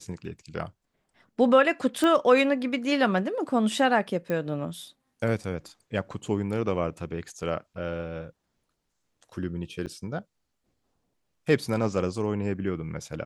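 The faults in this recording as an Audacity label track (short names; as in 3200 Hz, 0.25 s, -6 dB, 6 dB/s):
2.040000	2.040000	pop -14 dBFS
4.300000	4.300000	pop -18 dBFS
9.860000	9.870000	gap 8.6 ms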